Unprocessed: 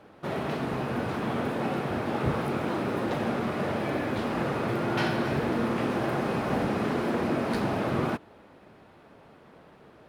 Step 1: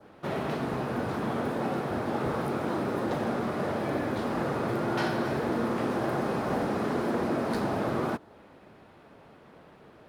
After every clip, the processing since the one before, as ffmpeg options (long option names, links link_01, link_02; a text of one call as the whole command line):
ffmpeg -i in.wav -filter_complex "[0:a]adynamicequalizer=threshold=0.00224:dfrequency=2600:dqfactor=1.5:tfrequency=2600:tqfactor=1.5:attack=5:release=100:ratio=0.375:range=3:mode=cutabove:tftype=bell,acrossover=split=250|4200[link_01][link_02][link_03];[link_01]alimiter=level_in=5.5dB:limit=-24dB:level=0:latency=1:release=178,volume=-5.5dB[link_04];[link_04][link_02][link_03]amix=inputs=3:normalize=0" out.wav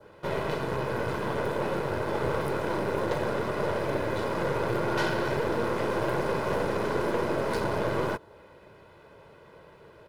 ffmpeg -i in.wav -af "aecho=1:1:2:0.62,aeval=exprs='0.158*(cos(1*acos(clip(val(0)/0.158,-1,1)))-cos(1*PI/2))+0.0158*(cos(6*acos(clip(val(0)/0.158,-1,1)))-cos(6*PI/2))':channel_layout=same" out.wav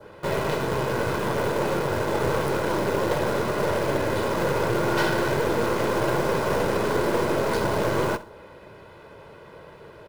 ffmpeg -i in.wav -filter_complex "[0:a]asplit=2[link_01][link_02];[link_02]aeval=exprs='(mod(31.6*val(0)+1,2)-1)/31.6':channel_layout=same,volume=-9dB[link_03];[link_01][link_03]amix=inputs=2:normalize=0,aecho=1:1:64|128|192:0.141|0.0452|0.0145,volume=4dB" out.wav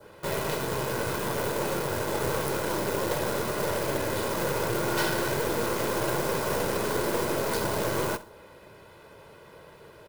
ffmpeg -i in.wav -af "crystalizer=i=2:c=0,volume=-5dB" out.wav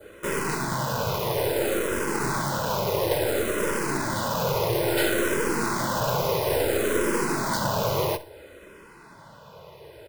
ffmpeg -i in.wav -filter_complex "[0:a]asplit=2[link_01][link_02];[link_02]afreqshift=-0.59[link_03];[link_01][link_03]amix=inputs=2:normalize=1,volume=6dB" out.wav